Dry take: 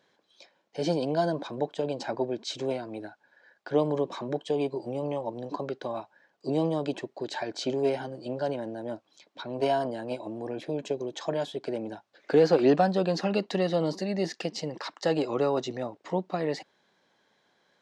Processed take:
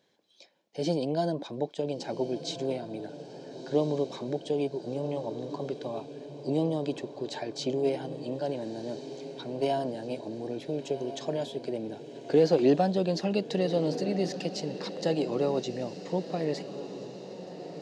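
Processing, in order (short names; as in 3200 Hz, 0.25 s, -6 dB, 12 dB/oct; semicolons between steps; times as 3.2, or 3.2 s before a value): bell 1300 Hz -9.5 dB 1.3 oct; diffused feedback echo 1.407 s, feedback 56%, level -11.5 dB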